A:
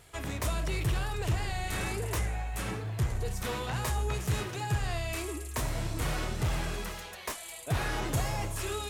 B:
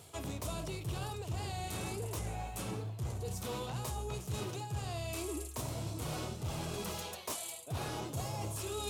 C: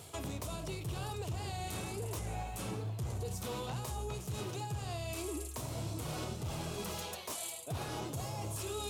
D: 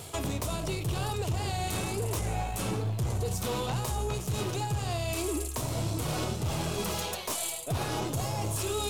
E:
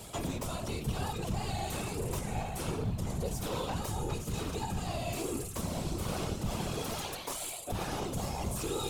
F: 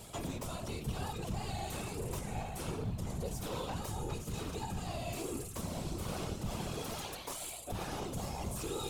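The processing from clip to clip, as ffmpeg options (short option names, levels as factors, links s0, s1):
-af "highpass=f=75:w=0.5412,highpass=f=75:w=1.3066,equalizer=f=1800:t=o:w=0.82:g=-12,areverse,acompressor=threshold=0.01:ratio=6,areverse,volume=1.58"
-af "alimiter=level_in=3.16:limit=0.0631:level=0:latency=1:release=190,volume=0.316,volume=1.58"
-af "aeval=exprs='0.0316*(cos(1*acos(clip(val(0)/0.0316,-1,1)))-cos(1*PI/2))+0.00141*(cos(6*acos(clip(val(0)/0.0316,-1,1)))-cos(6*PI/2))':c=same,volume=2.51"
-filter_complex "[0:a]acrossover=split=180|1700[s0][s1][s2];[s2]asoftclip=type=tanh:threshold=0.0282[s3];[s0][s1][s3]amix=inputs=3:normalize=0,afftfilt=real='hypot(re,im)*cos(2*PI*random(0))':imag='hypot(re,im)*sin(2*PI*random(1))':win_size=512:overlap=0.75,volume=1.33"
-af "aeval=exprs='val(0)+0.00158*(sin(2*PI*60*n/s)+sin(2*PI*2*60*n/s)/2+sin(2*PI*3*60*n/s)/3+sin(2*PI*4*60*n/s)/4+sin(2*PI*5*60*n/s)/5)':c=same,volume=0.631"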